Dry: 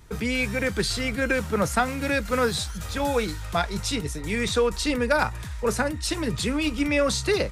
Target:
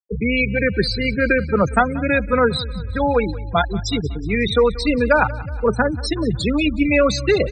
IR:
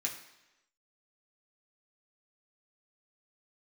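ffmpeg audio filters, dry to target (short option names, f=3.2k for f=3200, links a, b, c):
-filter_complex "[0:a]afftfilt=real='re*gte(hypot(re,im),0.0891)':imag='im*gte(hypot(re,im),0.0891)':win_size=1024:overlap=0.75,asplit=2[a][b];[b]aecho=0:1:184|368|552|736:0.112|0.0606|0.0327|0.0177[c];[a][c]amix=inputs=2:normalize=0,volume=7dB"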